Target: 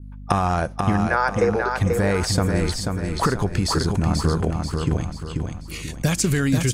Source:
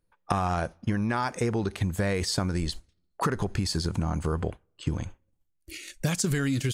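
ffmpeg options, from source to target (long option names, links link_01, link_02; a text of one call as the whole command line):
ffmpeg -i in.wav -filter_complex "[0:a]asettb=1/sr,asplit=3[link_01][link_02][link_03];[link_01]atrim=end=1.074[link_04];[link_02]atrim=start=1.07:end=1.77,asetpts=PTS-STARTPTS,afade=type=in:duration=0.004:curve=qsin,afade=type=out:start_time=0.696:duration=0.004:curve=qsin,highpass=frequency=430:width=0.5412,highpass=frequency=430:width=1.3066,equalizer=frequency=500:width_type=q:width=4:gain=10,equalizer=frequency=1500:width_type=q:width=4:gain=7,equalizer=frequency=3200:width_type=q:width=4:gain=-9,lowpass=frequency=6300:width=0.5412,lowpass=frequency=6300:width=1.3066[link_05];[link_03]atrim=start=1.766[link_06];[link_04][link_05]acrossfade=duration=0.004:curve1=hsin:curve2=qsin[link_07];[link_07][link_06]acrossfade=duration=0.004:curve1=qsin:curve2=hsin,asplit=2[link_08][link_09];[link_09]aecho=0:1:487|974|1461|1948|2435:0.596|0.244|0.1|0.0411|0.0168[link_10];[link_08][link_10]amix=inputs=2:normalize=0,aeval=exprs='val(0)+0.00794*(sin(2*PI*50*n/s)+sin(2*PI*2*50*n/s)/2+sin(2*PI*3*50*n/s)/3+sin(2*PI*4*50*n/s)/4+sin(2*PI*5*50*n/s)/5)':channel_layout=same,adynamicequalizer=threshold=0.00562:dfrequency=3700:dqfactor=0.97:tfrequency=3700:tqfactor=0.97:attack=5:release=100:ratio=0.375:range=2:mode=cutabove:tftype=bell,volume=6dB" out.wav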